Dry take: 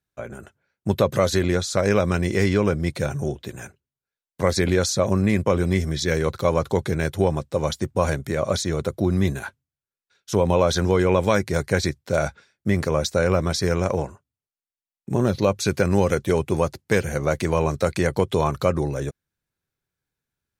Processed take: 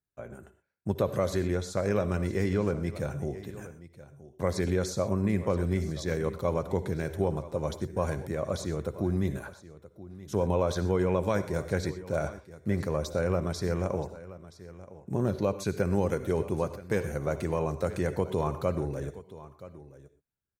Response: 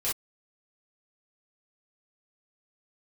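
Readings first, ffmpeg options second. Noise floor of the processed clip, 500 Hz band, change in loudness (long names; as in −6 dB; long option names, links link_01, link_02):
−63 dBFS, −7.5 dB, −8.0 dB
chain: -filter_complex "[0:a]equalizer=frequency=4000:width=0.44:gain=-7,aecho=1:1:975:0.141,asplit=2[link_01][link_02];[1:a]atrim=start_sample=2205,asetrate=38808,aresample=44100,adelay=56[link_03];[link_02][link_03]afir=irnorm=-1:irlink=0,volume=-20dB[link_04];[link_01][link_04]amix=inputs=2:normalize=0,volume=-7.5dB"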